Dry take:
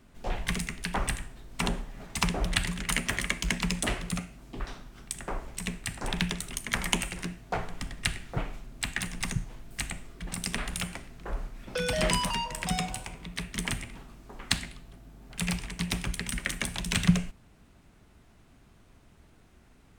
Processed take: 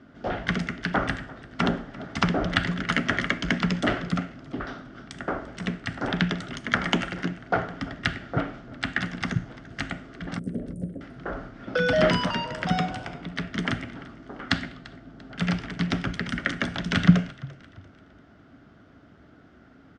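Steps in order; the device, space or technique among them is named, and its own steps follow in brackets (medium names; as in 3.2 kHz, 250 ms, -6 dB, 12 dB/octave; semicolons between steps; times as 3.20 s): 10.39–11.01 s: Chebyshev band-stop 540–9100 Hz, order 4; frequency-shifting delay pedal into a guitar cabinet (frequency-shifting echo 343 ms, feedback 39%, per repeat -40 Hz, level -20.5 dB; cabinet simulation 93–4500 Hz, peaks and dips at 280 Hz +8 dB, 630 Hz +4 dB, 970 Hz -7 dB, 1.4 kHz +8 dB, 2.5 kHz -9 dB, 4 kHz -7 dB); trim +6 dB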